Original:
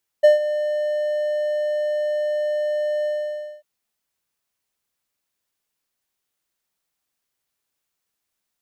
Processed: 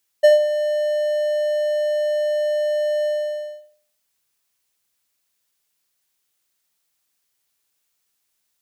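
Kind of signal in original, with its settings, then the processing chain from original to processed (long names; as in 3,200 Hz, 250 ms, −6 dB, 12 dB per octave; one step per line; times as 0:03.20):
note with an ADSR envelope triangle 600 Hz, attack 17 ms, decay 139 ms, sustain −13 dB, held 2.82 s, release 575 ms −5 dBFS
high-shelf EQ 2,100 Hz +8 dB
on a send: feedback echo with a low-pass in the loop 78 ms, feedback 33%, level −9.5 dB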